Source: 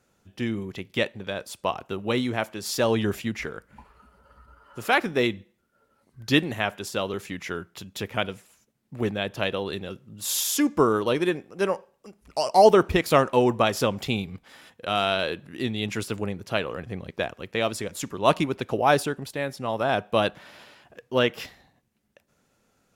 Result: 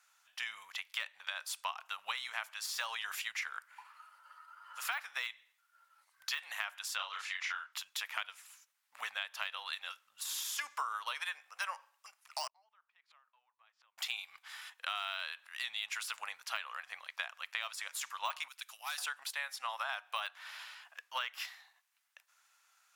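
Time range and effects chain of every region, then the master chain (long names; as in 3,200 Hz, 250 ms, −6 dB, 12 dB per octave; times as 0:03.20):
0:06.96–0:07.73: band-pass filter 230–5,400 Hz + double-tracking delay 32 ms −2.5 dB
0:12.47–0:13.98: low-pass filter 3,100 Hz + downward compressor 2.5 to 1, threshold −18 dBFS + gate with flip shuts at −26 dBFS, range −40 dB
0:18.48–0:18.98: first difference + gain into a clipping stage and back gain 31.5 dB
whole clip: de-essing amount 70%; inverse Chebyshev high-pass filter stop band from 390 Hz, stop band 50 dB; downward compressor 6 to 1, threshold −37 dBFS; level +2 dB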